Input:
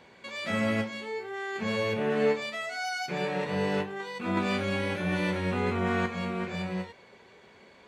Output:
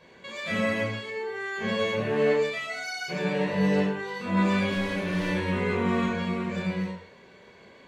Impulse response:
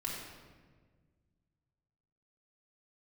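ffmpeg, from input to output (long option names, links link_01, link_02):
-filter_complex "[0:a]asettb=1/sr,asplit=3[link_01][link_02][link_03];[link_01]atrim=end=4.694[link_04];[link_02]atrim=start=4.69:end=5.28,asetpts=PTS-STARTPTS,afade=type=in:duration=0.004:curve=qsin,afade=type=out:start_time=0.586:duration=0.004:curve=qsin,volume=28dB,asoftclip=hard,volume=-28dB[link_05];[link_03]atrim=start=5.276[link_06];[link_04][link_05]acrossfade=duration=0.004:curve1=hsin:curve2=qsin[link_07];[link_07][link_06]acrossfade=duration=0.004:curve1=qsin:curve2=hsin[link_08];[1:a]atrim=start_sample=2205,afade=type=out:start_time=0.33:duration=0.01,atrim=end_sample=14994,asetrate=66150,aresample=44100[link_09];[link_08][link_09]afir=irnorm=-1:irlink=0,volume=3.5dB"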